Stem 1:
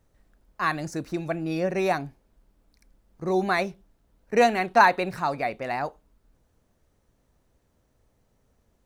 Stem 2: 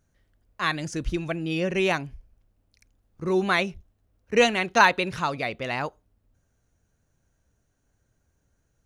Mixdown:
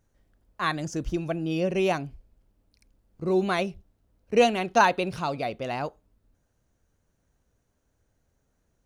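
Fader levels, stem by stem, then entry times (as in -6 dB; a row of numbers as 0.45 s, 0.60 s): -7.5 dB, -4.0 dB; 0.00 s, 0.00 s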